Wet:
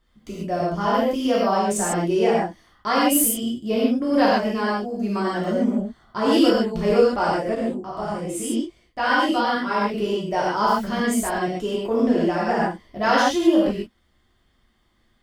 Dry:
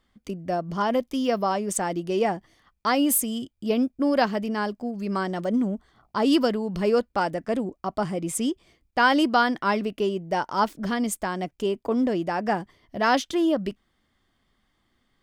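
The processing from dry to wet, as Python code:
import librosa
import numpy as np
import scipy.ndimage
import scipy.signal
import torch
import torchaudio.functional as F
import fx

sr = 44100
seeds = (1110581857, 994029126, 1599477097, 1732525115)

y = fx.low_shelf(x, sr, hz=130.0, db=4.5)
y = fx.rev_gated(y, sr, seeds[0], gate_ms=170, shape='flat', drr_db=-7.5)
y = fx.detune_double(y, sr, cents=30, at=(7.55, 9.94))
y = F.gain(torch.from_numpy(y), -4.0).numpy()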